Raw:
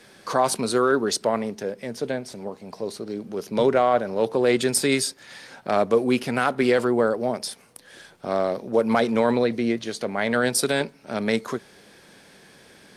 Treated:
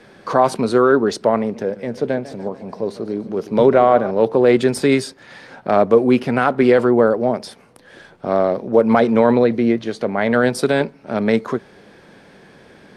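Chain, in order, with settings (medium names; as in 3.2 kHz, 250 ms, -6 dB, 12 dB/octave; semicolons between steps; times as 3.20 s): low-pass 1.4 kHz 6 dB/octave; 1.39–4.11 s: modulated delay 146 ms, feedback 63%, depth 116 cents, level -16.5 dB; trim +7.5 dB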